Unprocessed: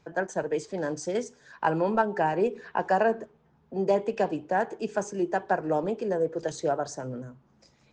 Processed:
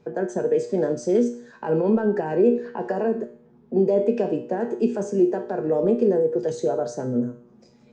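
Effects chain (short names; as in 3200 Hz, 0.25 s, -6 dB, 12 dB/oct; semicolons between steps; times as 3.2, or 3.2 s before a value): limiter -22 dBFS, peak gain reduction 11 dB; resonator 120 Hz, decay 0.49 s, harmonics all, mix 80%; small resonant body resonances 220/400 Hz, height 15 dB, ringing for 25 ms; gain +8 dB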